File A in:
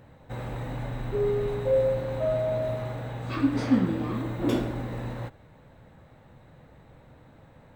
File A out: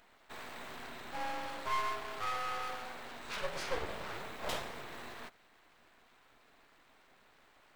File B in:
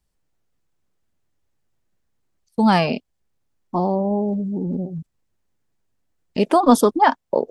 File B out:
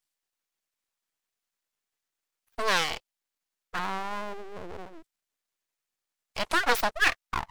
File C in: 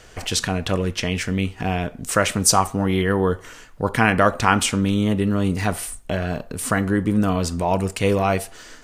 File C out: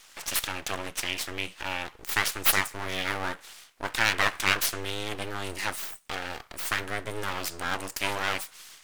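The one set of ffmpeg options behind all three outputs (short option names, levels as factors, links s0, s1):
-af "highpass=f=72:w=0.5412,highpass=f=72:w=1.3066,aeval=exprs='abs(val(0))':c=same,tiltshelf=f=730:g=-8.5,volume=0.398"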